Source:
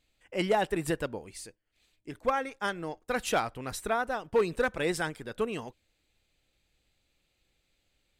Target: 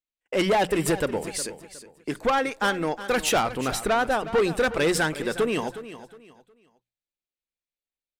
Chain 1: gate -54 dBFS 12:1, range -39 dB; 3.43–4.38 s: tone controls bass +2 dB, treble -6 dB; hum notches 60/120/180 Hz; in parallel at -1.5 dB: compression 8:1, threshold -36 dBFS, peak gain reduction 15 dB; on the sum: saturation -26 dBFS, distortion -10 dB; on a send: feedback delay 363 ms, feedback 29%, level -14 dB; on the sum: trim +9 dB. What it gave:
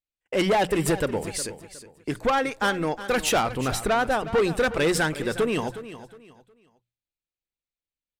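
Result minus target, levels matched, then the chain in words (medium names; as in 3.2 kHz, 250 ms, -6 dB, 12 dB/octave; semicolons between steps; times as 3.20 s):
125 Hz band +2.5 dB
gate -54 dBFS 12:1, range -39 dB; 3.43–4.38 s: tone controls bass +2 dB, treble -6 dB; hum notches 60/120/180 Hz; in parallel at -1.5 dB: compression 8:1, threshold -36 dBFS, peak gain reduction 15 dB + high-pass 100 Hz 24 dB/octave; on the sum: saturation -26 dBFS, distortion -10 dB; on a send: feedback delay 363 ms, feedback 29%, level -14 dB; on the sum: trim +9 dB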